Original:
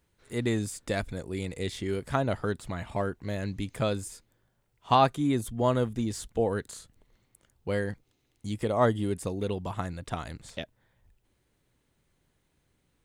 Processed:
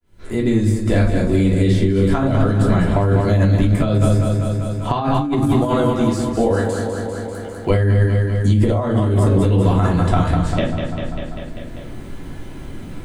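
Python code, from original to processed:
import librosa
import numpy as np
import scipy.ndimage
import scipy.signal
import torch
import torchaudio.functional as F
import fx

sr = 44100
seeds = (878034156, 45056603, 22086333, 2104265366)

y = fx.fade_in_head(x, sr, length_s=1.44)
y = fx.highpass(y, sr, hz=610.0, slope=6, at=(5.44, 7.7))
y = fx.echo_feedback(y, sr, ms=197, feedback_pct=53, wet_db=-8.0)
y = fx.room_shoebox(y, sr, seeds[0], volume_m3=240.0, walls='furnished', distance_m=3.0)
y = fx.over_compress(y, sr, threshold_db=-24.0, ratio=-1.0)
y = fx.tilt_eq(y, sr, slope=-1.5)
y = fx.band_squash(y, sr, depth_pct=70)
y = F.gain(torch.from_numpy(y), 5.5).numpy()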